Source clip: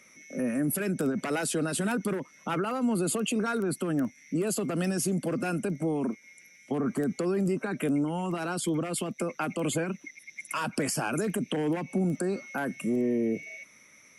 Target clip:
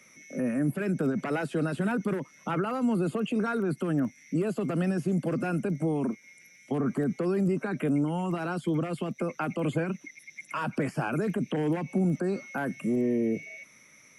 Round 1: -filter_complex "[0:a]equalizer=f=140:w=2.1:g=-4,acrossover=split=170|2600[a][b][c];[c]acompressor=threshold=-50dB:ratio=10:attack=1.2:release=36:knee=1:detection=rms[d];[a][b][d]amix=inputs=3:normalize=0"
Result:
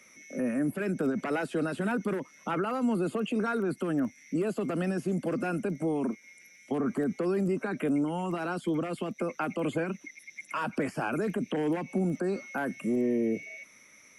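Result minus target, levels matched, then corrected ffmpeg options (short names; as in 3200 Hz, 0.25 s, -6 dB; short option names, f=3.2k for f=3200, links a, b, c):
125 Hz band -4.0 dB
-filter_complex "[0:a]equalizer=f=140:w=2.1:g=4.5,acrossover=split=170|2600[a][b][c];[c]acompressor=threshold=-50dB:ratio=10:attack=1.2:release=36:knee=1:detection=rms[d];[a][b][d]amix=inputs=3:normalize=0"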